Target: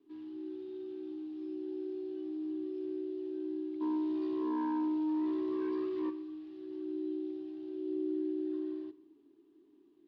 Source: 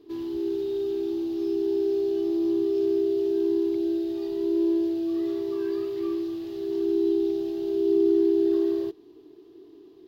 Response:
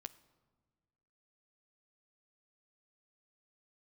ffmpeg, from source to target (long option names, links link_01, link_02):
-filter_complex "[0:a]equalizer=frequency=610:width=3:gain=-11.5,afreqshift=-23,asplit=3[link_01][link_02][link_03];[link_01]afade=type=out:start_time=3.8:duration=0.02[link_04];[link_02]aeval=exprs='0.133*sin(PI/2*2.24*val(0)/0.133)':channel_layout=same,afade=type=in:start_time=3.8:duration=0.02,afade=type=out:start_time=6.09:duration=0.02[link_05];[link_03]afade=type=in:start_time=6.09:duration=0.02[link_06];[link_04][link_05][link_06]amix=inputs=3:normalize=0,highpass=170,lowpass=2800[link_07];[1:a]atrim=start_sample=2205,afade=type=out:start_time=0.38:duration=0.01,atrim=end_sample=17199[link_08];[link_07][link_08]afir=irnorm=-1:irlink=0,volume=-7.5dB" -ar 48000 -c:a libopus -b:a 64k